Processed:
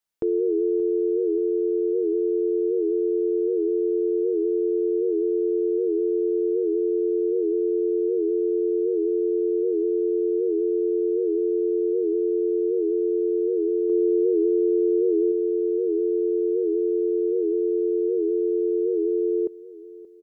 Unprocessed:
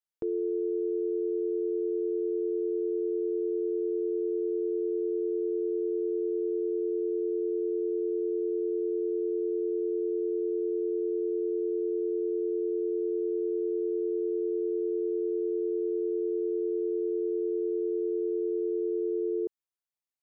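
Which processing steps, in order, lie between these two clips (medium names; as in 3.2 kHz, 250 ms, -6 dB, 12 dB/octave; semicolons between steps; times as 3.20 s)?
13.89–15.32 s: dynamic bell 260 Hz, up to +4 dB, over -45 dBFS, Q 1; feedback delay 578 ms, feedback 46%, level -17.5 dB; warped record 78 rpm, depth 100 cents; trim +7.5 dB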